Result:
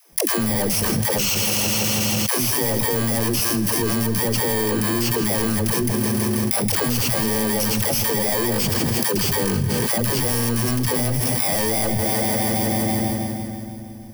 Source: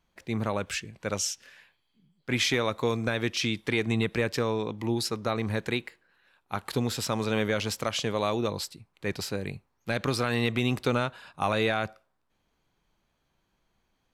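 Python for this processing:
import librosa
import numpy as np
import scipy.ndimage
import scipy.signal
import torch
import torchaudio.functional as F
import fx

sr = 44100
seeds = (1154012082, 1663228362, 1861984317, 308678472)

p1 = fx.bit_reversed(x, sr, seeds[0], block=32)
p2 = fx.hum_notches(p1, sr, base_hz=50, count=2)
p3 = fx.leveller(p2, sr, passes=5)
p4 = fx.dispersion(p3, sr, late='lows', ms=125.0, hz=350.0)
p5 = p4 + fx.echo_thinned(p4, sr, ms=162, feedback_pct=61, hz=170.0, wet_db=-15.5, dry=0)
p6 = fx.rev_fdn(p5, sr, rt60_s=2.8, lf_ratio=1.35, hf_ratio=0.7, size_ms=26.0, drr_db=18.0)
p7 = fx.env_flatten(p6, sr, amount_pct=100)
y = p7 * librosa.db_to_amplitude(-7.0)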